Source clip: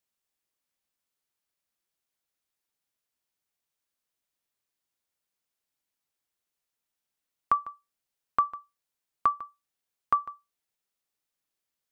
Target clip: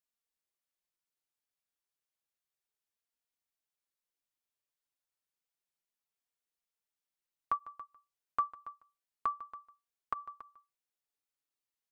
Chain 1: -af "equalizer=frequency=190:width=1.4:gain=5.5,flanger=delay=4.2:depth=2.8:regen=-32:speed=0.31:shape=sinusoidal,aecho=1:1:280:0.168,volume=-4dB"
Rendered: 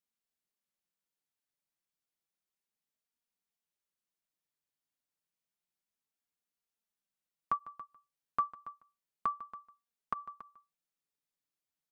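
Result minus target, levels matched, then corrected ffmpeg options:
250 Hz band +6.0 dB
-af "equalizer=frequency=190:width=1.4:gain=-4.5,flanger=delay=4.2:depth=2.8:regen=-32:speed=0.31:shape=sinusoidal,aecho=1:1:280:0.168,volume=-4dB"

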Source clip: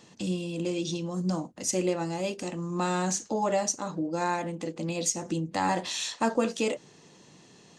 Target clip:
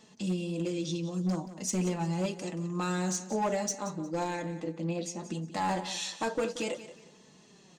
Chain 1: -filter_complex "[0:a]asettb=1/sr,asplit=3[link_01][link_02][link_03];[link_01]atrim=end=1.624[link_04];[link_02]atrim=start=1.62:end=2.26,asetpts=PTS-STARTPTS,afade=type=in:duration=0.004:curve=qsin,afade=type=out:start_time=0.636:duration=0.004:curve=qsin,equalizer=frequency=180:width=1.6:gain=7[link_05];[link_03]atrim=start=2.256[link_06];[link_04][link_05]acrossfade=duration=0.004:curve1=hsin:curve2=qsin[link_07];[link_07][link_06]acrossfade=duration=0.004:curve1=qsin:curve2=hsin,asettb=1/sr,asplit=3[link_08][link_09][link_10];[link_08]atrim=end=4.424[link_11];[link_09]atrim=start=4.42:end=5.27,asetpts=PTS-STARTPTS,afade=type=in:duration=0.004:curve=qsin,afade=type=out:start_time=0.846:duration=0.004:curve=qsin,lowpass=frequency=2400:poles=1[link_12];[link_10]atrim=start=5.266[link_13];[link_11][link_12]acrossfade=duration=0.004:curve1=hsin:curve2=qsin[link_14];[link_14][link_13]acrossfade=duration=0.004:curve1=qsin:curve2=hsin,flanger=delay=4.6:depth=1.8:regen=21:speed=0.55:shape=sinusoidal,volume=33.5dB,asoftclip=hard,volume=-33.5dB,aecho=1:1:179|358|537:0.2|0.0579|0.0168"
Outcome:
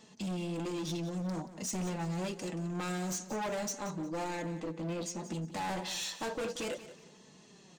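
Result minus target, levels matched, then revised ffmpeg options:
gain into a clipping stage and back: distortion +11 dB
-filter_complex "[0:a]asettb=1/sr,asplit=3[link_01][link_02][link_03];[link_01]atrim=end=1.624[link_04];[link_02]atrim=start=1.62:end=2.26,asetpts=PTS-STARTPTS,afade=type=in:duration=0.004:curve=qsin,afade=type=out:start_time=0.636:duration=0.004:curve=qsin,equalizer=frequency=180:width=1.6:gain=7[link_05];[link_03]atrim=start=2.256[link_06];[link_04][link_05]acrossfade=duration=0.004:curve1=hsin:curve2=qsin[link_07];[link_07][link_06]acrossfade=duration=0.004:curve1=qsin:curve2=hsin,asettb=1/sr,asplit=3[link_08][link_09][link_10];[link_08]atrim=end=4.424[link_11];[link_09]atrim=start=4.42:end=5.27,asetpts=PTS-STARTPTS,afade=type=in:duration=0.004:curve=qsin,afade=type=out:start_time=0.846:duration=0.004:curve=qsin,lowpass=frequency=2400:poles=1[link_12];[link_10]atrim=start=5.266[link_13];[link_11][link_12]acrossfade=duration=0.004:curve1=hsin:curve2=qsin[link_14];[link_14][link_13]acrossfade=duration=0.004:curve1=qsin:curve2=hsin,flanger=delay=4.6:depth=1.8:regen=21:speed=0.55:shape=sinusoidal,volume=24.5dB,asoftclip=hard,volume=-24.5dB,aecho=1:1:179|358|537:0.2|0.0579|0.0168"

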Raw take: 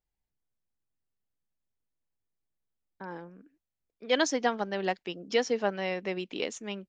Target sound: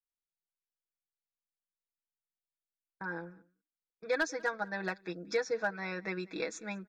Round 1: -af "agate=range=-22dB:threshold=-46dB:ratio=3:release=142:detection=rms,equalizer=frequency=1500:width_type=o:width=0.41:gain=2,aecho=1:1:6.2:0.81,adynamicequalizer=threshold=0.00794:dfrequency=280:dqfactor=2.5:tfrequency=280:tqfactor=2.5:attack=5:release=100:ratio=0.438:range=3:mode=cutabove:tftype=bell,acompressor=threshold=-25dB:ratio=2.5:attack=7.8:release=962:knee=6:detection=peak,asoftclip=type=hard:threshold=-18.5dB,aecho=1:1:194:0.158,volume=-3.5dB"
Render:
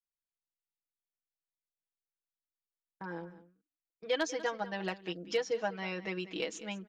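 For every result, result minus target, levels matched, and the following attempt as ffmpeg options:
4,000 Hz band +6.5 dB; echo-to-direct +8.5 dB; 2,000 Hz band −4.0 dB
-af "agate=range=-22dB:threshold=-46dB:ratio=3:release=142:detection=rms,equalizer=frequency=1500:width_type=o:width=0.41:gain=2,aecho=1:1:6.2:0.81,adynamicequalizer=threshold=0.00794:dfrequency=280:dqfactor=2.5:tfrequency=280:tqfactor=2.5:attack=5:release=100:ratio=0.438:range=3:mode=cutabove:tftype=bell,asuperstop=centerf=3000:order=12:qfactor=4.3,acompressor=threshold=-25dB:ratio=2.5:attack=7.8:release=962:knee=6:detection=peak,asoftclip=type=hard:threshold=-18.5dB,aecho=1:1:194:0.158,volume=-3.5dB"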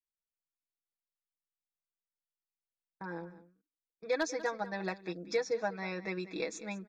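echo-to-direct +8.5 dB; 2,000 Hz band −4.0 dB
-af "agate=range=-22dB:threshold=-46dB:ratio=3:release=142:detection=rms,equalizer=frequency=1500:width_type=o:width=0.41:gain=2,aecho=1:1:6.2:0.81,adynamicequalizer=threshold=0.00794:dfrequency=280:dqfactor=2.5:tfrequency=280:tqfactor=2.5:attack=5:release=100:ratio=0.438:range=3:mode=cutabove:tftype=bell,asuperstop=centerf=3000:order=12:qfactor=4.3,acompressor=threshold=-25dB:ratio=2.5:attack=7.8:release=962:knee=6:detection=peak,asoftclip=type=hard:threshold=-18.5dB,aecho=1:1:194:0.0596,volume=-3.5dB"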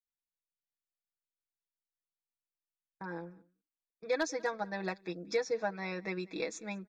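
2,000 Hz band −4.0 dB
-af "agate=range=-22dB:threshold=-46dB:ratio=3:release=142:detection=rms,equalizer=frequency=1500:width_type=o:width=0.41:gain=12,aecho=1:1:6.2:0.81,adynamicequalizer=threshold=0.00794:dfrequency=280:dqfactor=2.5:tfrequency=280:tqfactor=2.5:attack=5:release=100:ratio=0.438:range=3:mode=cutabove:tftype=bell,asuperstop=centerf=3000:order=12:qfactor=4.3,acompressor=threshold=-25dB:ratio=2.5:attack=7.8:release=962:knee=6:detection=peak,asoftclip=type=hard:threshold=-18.5dB,aecho=1:1:194:0.0596,volume=-3.5dB"

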